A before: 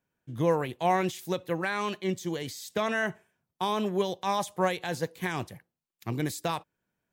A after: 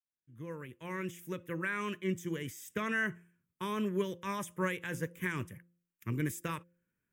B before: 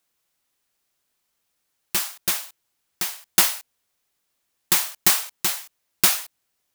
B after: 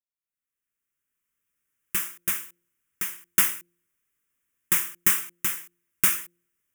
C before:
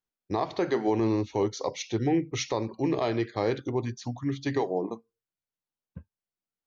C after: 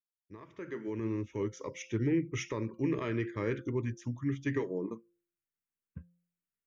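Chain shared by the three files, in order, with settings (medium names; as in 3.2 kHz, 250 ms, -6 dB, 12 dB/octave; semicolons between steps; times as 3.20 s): fade-in on the opening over 1.92 s; static phaser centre 1.8 kHz, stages 4; de-hum 173.5 Hz, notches 3; trim -1.5 dB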